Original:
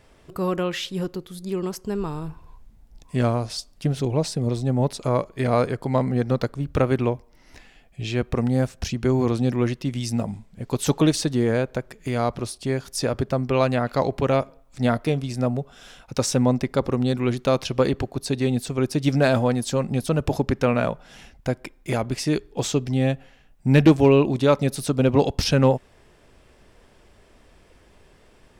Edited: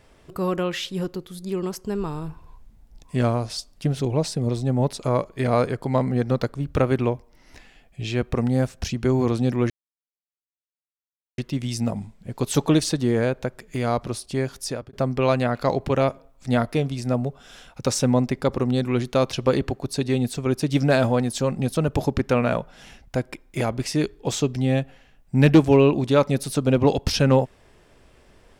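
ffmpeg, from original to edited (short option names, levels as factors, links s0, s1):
-filter_complex "[0:a]asplit=3[s0][s1][s2];[s0]atrim=end=9.7,asetpts=PTS-STARTPTS,afade=t=out:st=9.696:d=0.004:c=hsin,apad=pad_dur=1.68[s3];[s1]atrim=start=9.7:end=13.25,asetpts=PTS-STARTPTS,afade=t=in:d=0.004:c=hsin,afade=t=out:st=3.18:d=0.37[s4];[s2]atrim=start=13.25,asetpts=PTS-STARTPTS,afade=t=in:d=0.004:c=hsin[s5];[s3][s4][s5]concat=n=3:v=0:a=1"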